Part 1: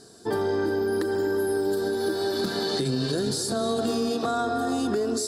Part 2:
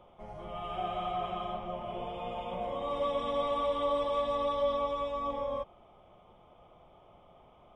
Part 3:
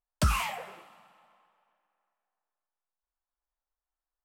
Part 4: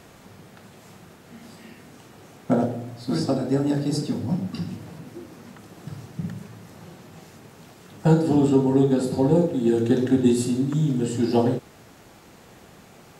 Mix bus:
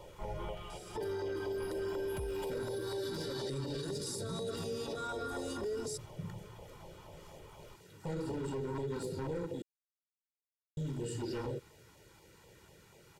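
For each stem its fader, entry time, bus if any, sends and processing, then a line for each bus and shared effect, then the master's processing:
-3.0 dB, 0.70 s, no send, band-stop 4.3 kHz, Q 12; compression, threshold -29 dBFS, peak gain reduction 7.5 dB
-3.0 dB, 0.00 s, no send, compressor with a negative ratio -43 dBFS, ratio -1
-2.5 dB, 1.95 s, no send, median filter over 41 samples; compression, threshold -29 dBFS, peak gain reduction 8.5 dB
-11.0 dB, 0.00 s, muted 9.62–10.77 s, no send, overload inside the chain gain 19.5 dB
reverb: none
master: LFO notch saw down 4.1 Hz 430–1600 Hz; comb 2.1 ms, depth 63%; peak limiter -30.5 dBFS, peak gain reduction 11.5 dB

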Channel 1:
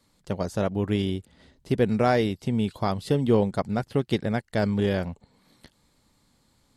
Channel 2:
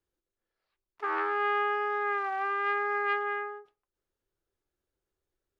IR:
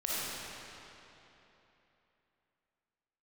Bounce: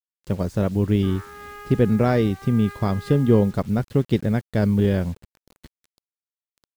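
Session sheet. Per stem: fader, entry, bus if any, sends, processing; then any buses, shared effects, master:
+1.0 dB, 0.00 s, no send, tilt EQ -2 dB/octave
-11.0 dB, 0.00 s, no send, none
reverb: none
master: word length cut 8-bit, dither none; peaking EQ 750 Hz -4.5 dB 0.71 oct

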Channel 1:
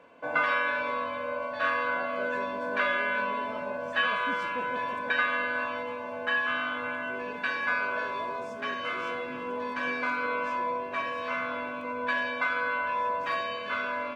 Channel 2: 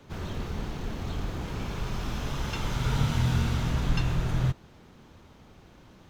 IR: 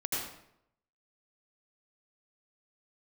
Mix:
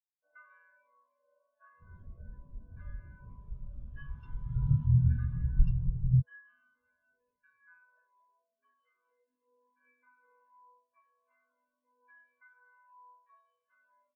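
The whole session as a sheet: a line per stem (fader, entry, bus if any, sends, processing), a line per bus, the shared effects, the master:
-8.5 dB, 0.00 s, no send, none
+1.0 dB, 1.70 s, no send, vibrato 0.55 Hz 5.3 cents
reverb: none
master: spectral contrast expander 2.5:1

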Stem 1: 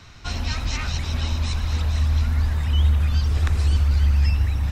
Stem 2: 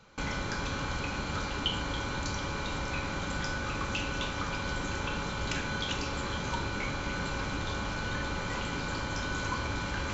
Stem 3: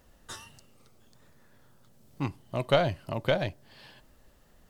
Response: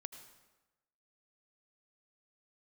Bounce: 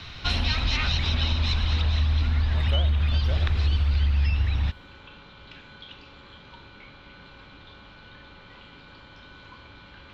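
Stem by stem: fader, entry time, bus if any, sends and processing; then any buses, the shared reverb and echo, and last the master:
+2.5 dB, 0.00 s, bus A, send -18.5 dB, none
-17.5 dB, 0.00 s, bus A, send -5.5 dB, none
-12.5 dB, 0.00 s, no bus, no send, none
bus A: 0.0 dB, resonant low-pass 3.6 kHz, resonance Q 2.4; compression, threshold -21 dBFS, peak gain reduction 10 dB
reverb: on, RT60 1.1 s, pre-delay 73 ms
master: treble shelf 5.1 kHz +4.5 dB

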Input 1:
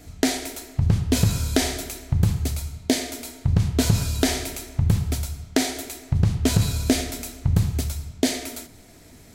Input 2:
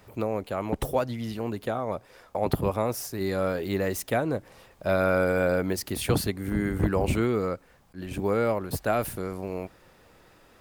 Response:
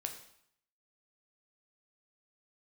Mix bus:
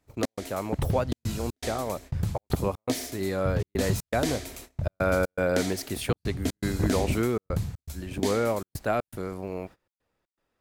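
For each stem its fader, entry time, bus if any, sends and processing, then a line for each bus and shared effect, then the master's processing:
-9.0 dB, 0.00 s, no send, treble shelf 11 kHz +5.5 dB; vibrato 4.2 Hz 10 cents
-1.0 dB, 0.00 s, no send, none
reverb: none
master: gate -43 dBFS, range -21 dB; treble shelf 9.4 kHz -4.5 dB; trance gate "xx.xxxxxx." 120 bpm -60 dB

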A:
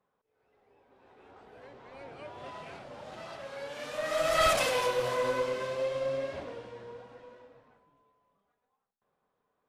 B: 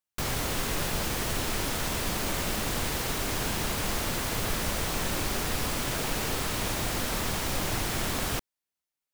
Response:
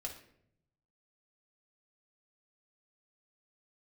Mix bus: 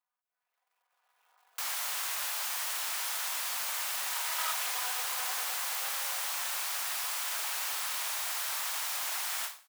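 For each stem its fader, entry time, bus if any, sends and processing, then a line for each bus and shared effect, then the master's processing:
-9.5 dB, 0.00 s, no send, cycle switcher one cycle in 2, muted; treble shelf 12 kHz +6 dB; comb 4.1 ms, depth 75%
-4.0 dB, 1.40 s, no send, none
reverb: none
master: high-pass 820 Hz 24 dB/octave; treble shelf 7.1 kHz +6 dB; endings held to a fixed fall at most 150 dB/s

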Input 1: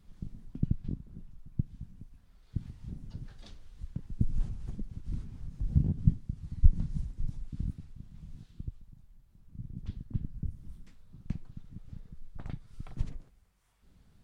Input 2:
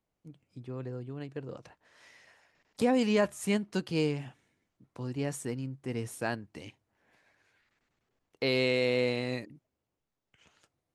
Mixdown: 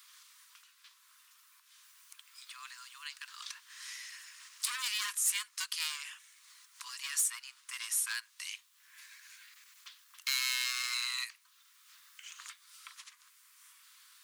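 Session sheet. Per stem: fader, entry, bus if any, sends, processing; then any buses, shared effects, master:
+1.5 dB, 0.00 s, no send, compression 1.5:1, threshold -36 dBFS, peak gain reduction 9 dB
+1.0 dB, 1.85 s, no send, treble shelf 3.8 kHz +9 dB; overload inside the chain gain 28 dB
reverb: none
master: steep high-pass 1 kHz 96 dB/octave; tilt EQ +2.5 dB/octave; three bands compressed up and down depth 40%

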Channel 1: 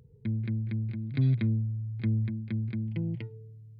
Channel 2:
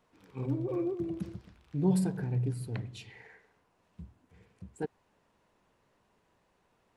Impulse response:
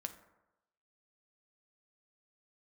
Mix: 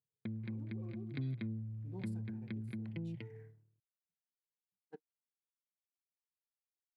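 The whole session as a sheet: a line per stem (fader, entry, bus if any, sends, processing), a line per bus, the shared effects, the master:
-0.5 dB, 0.00 s, no send, none
-14.0 dB, 0.10 s, send -10.5 dB, local Wiener filter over 9 samples; bass shelf 280 Hz -5 dB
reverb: on, RT60 0.95 s, pre-delay 5 ms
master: gate -47 dBFS, range -39 dB; high-pass 140 Hz 12 dB/octave; compression 2:1, threshold -45 dBFS, peak gain reduction 11 dB

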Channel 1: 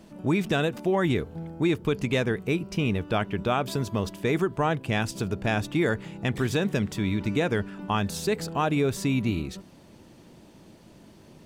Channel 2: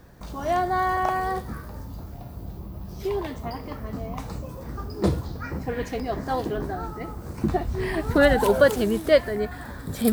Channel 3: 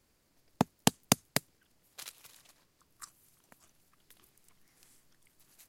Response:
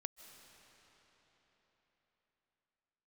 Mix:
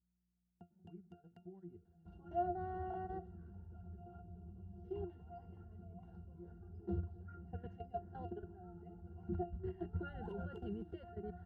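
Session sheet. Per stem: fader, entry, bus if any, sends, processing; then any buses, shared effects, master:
-11.0 dB, 0.60 s, send -21 dB, median filter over 15 samples; treble shelf 2.1 kHz -7 dB; compression 3:1, threshold -34 dBFS, peak gain reduction 11 dB
-3.0 dB, 1.85 s, no send, none
-15.0 dB, 0.00 s, no send, hum 60 Hz, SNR 17 dB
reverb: on, RT60 4.4 s, pre-delay 115 ms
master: treble shelf 2 kHz -4.5 dB; level held to a coarse grid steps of 15 dB; pitch-class resonator F, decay 0.15 s

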